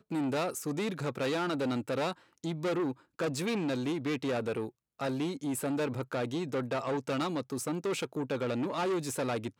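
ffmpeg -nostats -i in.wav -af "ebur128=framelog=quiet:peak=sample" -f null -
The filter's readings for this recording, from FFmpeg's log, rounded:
Integrated loudness:
  I:         -33.3 LUFS
  Threshold: -43.3 LUFS
Loudness range:
  LRA:         0.8 LU
  Threshold: -53.5 LUFS
  LRA low:   -33.9 LUFS
  LRA high:  -33.1 LUFS
Sample peak:
  Peak:      -21.9 dBFS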